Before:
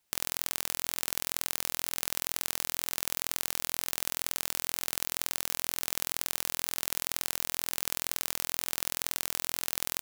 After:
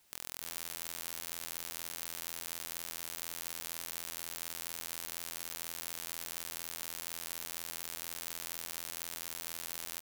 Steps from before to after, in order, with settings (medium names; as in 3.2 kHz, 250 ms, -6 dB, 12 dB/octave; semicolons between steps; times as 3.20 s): on a send: delay 297 ms -15.5 dB; on the sum: peak limiter -13 dBFS, peak gain reduction 11 dB; integer overflow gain 16.5 dB; trim +8 dB